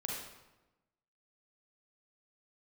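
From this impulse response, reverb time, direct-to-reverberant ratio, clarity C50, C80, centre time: 1.1 s, -2.5 dB, -0.5 dB, 3.5 dB, 65 ms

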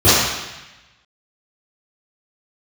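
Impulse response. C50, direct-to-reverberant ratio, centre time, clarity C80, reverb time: -3.0 dB, -16.5 dB, 0.102 s, 0.5 dB, 1.0 s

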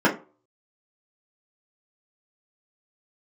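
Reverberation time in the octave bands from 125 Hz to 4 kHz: 0.40, 0.35, 0.40, 0.35, 0.25, 0.20 s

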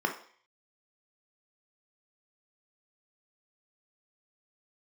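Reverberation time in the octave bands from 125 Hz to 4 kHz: 0.35, 0.45, 0.50, 0.55, 0.60, 0.55 s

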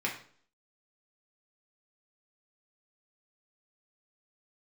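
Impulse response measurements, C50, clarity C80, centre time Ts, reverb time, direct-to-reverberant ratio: 8.0 dB, 12.0 dB, 24 ms, 0.50 s, -3.0 dB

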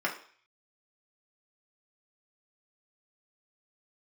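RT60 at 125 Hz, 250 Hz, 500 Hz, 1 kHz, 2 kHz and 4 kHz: 0.35, 0.40, 0.45, 0.50, 0.55, 0.55 s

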